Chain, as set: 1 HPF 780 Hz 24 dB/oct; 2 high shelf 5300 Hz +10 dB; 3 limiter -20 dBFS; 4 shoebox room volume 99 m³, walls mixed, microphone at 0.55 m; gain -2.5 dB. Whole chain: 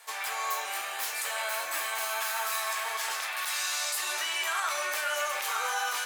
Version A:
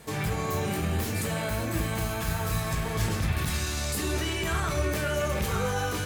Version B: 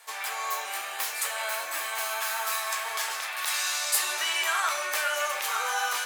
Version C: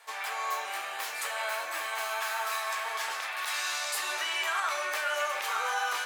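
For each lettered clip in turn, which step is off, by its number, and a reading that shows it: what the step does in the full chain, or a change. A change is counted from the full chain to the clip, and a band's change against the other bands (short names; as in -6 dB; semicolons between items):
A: 1, 500 Hz band +11.0 dB; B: 3, crest factor change +4.5 dB; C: 2, 8 kHz band -5.0 dB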